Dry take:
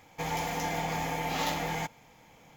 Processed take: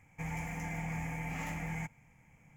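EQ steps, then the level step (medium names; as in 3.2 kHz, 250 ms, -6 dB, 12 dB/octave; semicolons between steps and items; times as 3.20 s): FFT filter 150 Hz 0 dB, 410 Hz -16 dB, 710 Hz -14 dB, 1.4 kHz -12 dB, 2.3 kHz -4 dB, 3.8 kHz -30 dB, 8 kHz -6 dB, 14 kHz -17 dB; +1.0 dB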